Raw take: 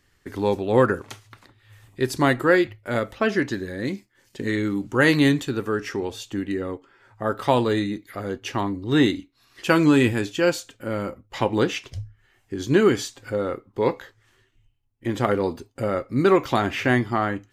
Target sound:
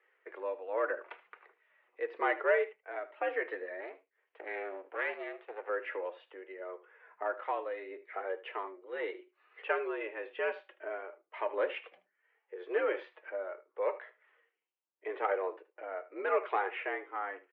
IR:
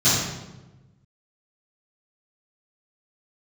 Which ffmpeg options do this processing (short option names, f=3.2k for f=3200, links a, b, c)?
-filter_complex "[0:a]asplit=2[a][b];[b]acompressor=threshold=-33dB:ratio=6,volume=-1.5dB[c];[a][c]amix=inputs=2:normalize=0,tremolo=f=0.85:d=0.6,asoftclip=type=tanh:threshold=-8.5dB,flanger=delay=2.5:depth=2.5:regen=-37:speed=0.72:shape=triangular,asettb=1/sr,asplit=3[d][e][f];[d]atrim=end=3.804[g];[e]atrim=start=3.8:end=5.69,asetpts=PTS-STARTPTS,afade=t=in:d=0.004:c=qsin,afade=t=out:st=1.886:d=0.004:c=qsin,aeval=exprs='max(val(0),0)':c=same[h];[f]atrim=start=5.686[i];[g][h]acrossfade=d=0.004:c1=hsin:c2=qsin[j];[j][i]acrossfade=d=0.004:c1=qsin:c2=hsin,highpass=f=360:t=q:w=0.5412,highpass=f=360:t=q:w=1.307,lowpass=f=2.5k:t=q:w=0.5176,lowpass=f=2.5k:t=q:w=0.7071,lowpass=f=2.5k:t=q:w=1.932,afreqshift=83,aecho=1:1:77:0.141,volume=-4.5dB"